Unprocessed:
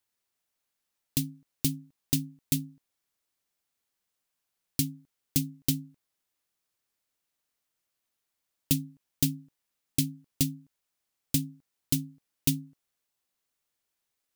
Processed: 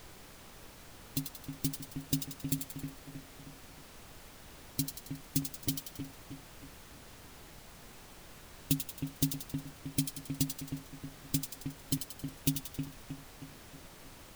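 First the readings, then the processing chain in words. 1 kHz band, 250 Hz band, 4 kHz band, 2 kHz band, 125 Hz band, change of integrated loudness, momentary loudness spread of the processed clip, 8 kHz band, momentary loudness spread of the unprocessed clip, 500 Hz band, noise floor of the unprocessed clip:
no reading, -4.0 dB, -4.5 dB, -0.5 dB, -4.0 dB, -6.0 dB, 18 LU, -4.5 dB, 12 LU, +0.5 dB, -83 dBFS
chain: expander on every frequency bin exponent 2; two-band feedback delay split 2.4 kHz, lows 315 ms, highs 90 ms, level -6 dB; added noise pink -50 dBFS; trim -2 dB

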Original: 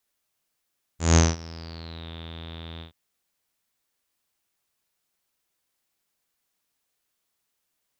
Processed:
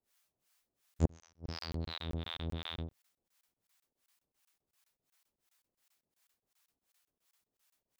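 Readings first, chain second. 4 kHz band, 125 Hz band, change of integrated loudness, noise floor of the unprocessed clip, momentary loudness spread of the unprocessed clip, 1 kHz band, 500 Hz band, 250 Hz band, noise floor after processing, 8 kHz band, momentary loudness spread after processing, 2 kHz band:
-7.5 dB, -11.5 dB, -16.5 dB, -79 dBFS, 19 LU, -14.5 dB, -11.5 dB, -11.0 dB, under -85 dBFS, -29.5 dB, 10 LU, -13.0 dB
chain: harmonic tremolo 2.8 Hz, depth 100%, crossover 700 Hz; inverted gate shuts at -20 dBFS, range -39 dB; crackling interface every 0.13 s, samples 1024, zero, from 0.94 s; trim +4 dB

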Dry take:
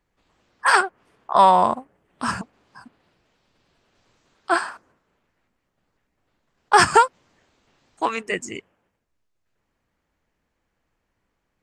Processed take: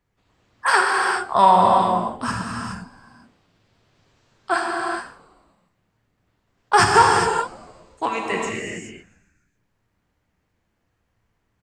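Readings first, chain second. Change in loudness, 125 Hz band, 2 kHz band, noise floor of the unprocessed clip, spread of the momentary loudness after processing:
+0.5 dB, +7.0 dB, +1.5 dB, -76 dBFS, 17 LU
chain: peaking EQ 110 Hz +8 dB 0.98 oct; on a send: frequency-shifting echo 137 ms, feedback 64%, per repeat -100 Hz, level -24 dB; on the sum: gated-style reverb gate 450 ms flat, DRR -1 dB; trim -2 dB

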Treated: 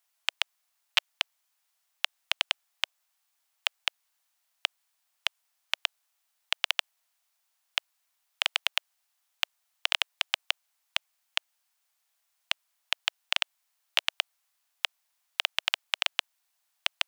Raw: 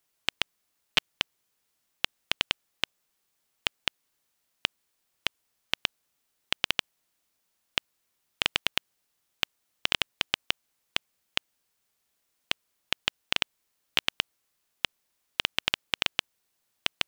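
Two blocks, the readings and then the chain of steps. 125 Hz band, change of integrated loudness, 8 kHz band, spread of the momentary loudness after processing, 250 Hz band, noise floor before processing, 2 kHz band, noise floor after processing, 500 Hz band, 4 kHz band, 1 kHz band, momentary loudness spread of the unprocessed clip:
under -40 dB, 0.0 dB, 0.0 dB, 6 LU, under -40 dB, -77 dBFS, 0.0 dB, -77 dBFS, -7.0 dB, 0.0 dB, 0.0 dB, 6 LU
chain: steep high-pass 640 Hz 48 dB/octave

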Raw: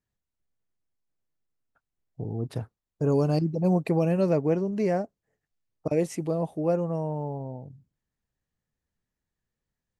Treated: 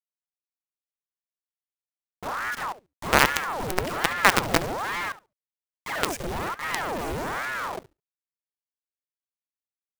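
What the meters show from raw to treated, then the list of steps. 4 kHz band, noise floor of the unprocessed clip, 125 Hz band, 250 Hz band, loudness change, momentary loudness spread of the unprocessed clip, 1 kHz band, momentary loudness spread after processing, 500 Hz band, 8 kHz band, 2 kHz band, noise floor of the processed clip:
+19.5 dB, under -85 dBFS, -9.5 dB, -7.5 dB, +1.0 dB, 14 LU, +11.0 dB, 14 LU, -5.0 dB, +15.5 dB, +21.0 dB, under -85 dBFS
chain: in parallel at -3 dB: peak limiter -21 dBFS, peak gain reduction 8 dB; on the sum: phase dispersion lows, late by 76 ms, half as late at 750 Hz; pre-echo 47 ms -15 dB; companded quantiser 2-bit; on a send: flutter echo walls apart 12 m, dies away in 0.24 s; on the sum: ring modulator with a swept carrier 880 Hz, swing 80%, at 1.2 Hz; trim -1.5 dB

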